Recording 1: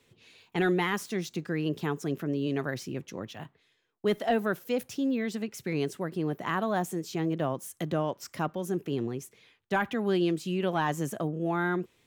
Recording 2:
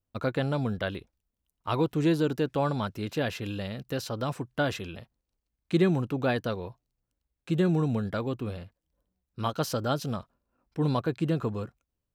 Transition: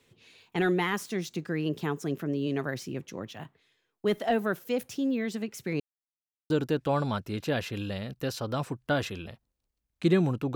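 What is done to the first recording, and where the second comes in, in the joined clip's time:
recording 1
5.8–6.5 mute
6.5 switch to recording 2 from 2.19 s

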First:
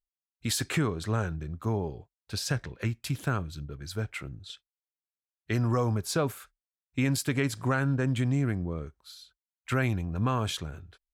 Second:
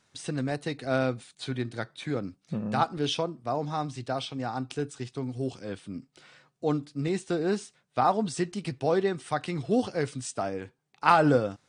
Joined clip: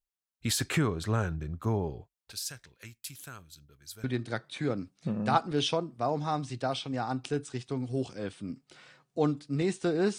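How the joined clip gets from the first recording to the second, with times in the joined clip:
first
2.32–4.04 pre-emphasis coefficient 0.9
4.04 switch to second from 1.5 s

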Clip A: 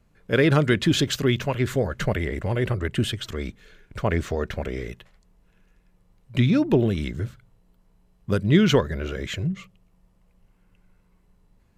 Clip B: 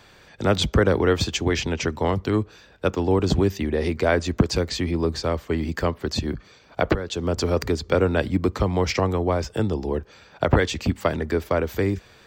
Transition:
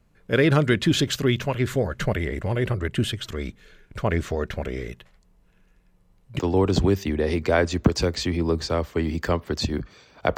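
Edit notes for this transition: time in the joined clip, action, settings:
clip A
6.39 switch to clip B from 2.93 s

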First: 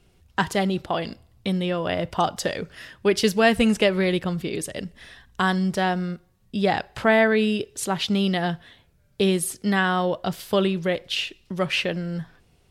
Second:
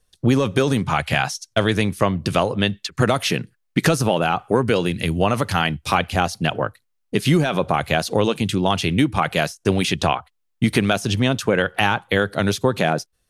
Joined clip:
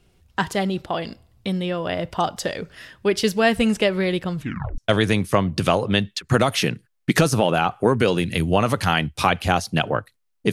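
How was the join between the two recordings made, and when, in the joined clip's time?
first
4.35 tape stop 0.43 s
4.78 switch to second from 1.46 s

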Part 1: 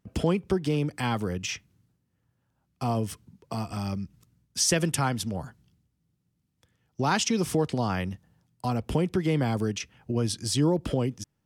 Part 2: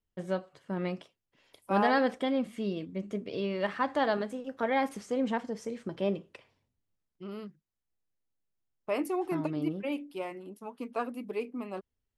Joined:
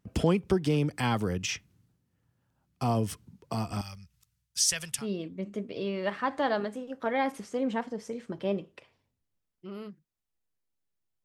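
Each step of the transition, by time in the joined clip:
part 1
3.81–5.07 passive tone stack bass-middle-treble 10-0-10
4.99 switch to part 2 from 2.56 s, crossfade 0.16 s

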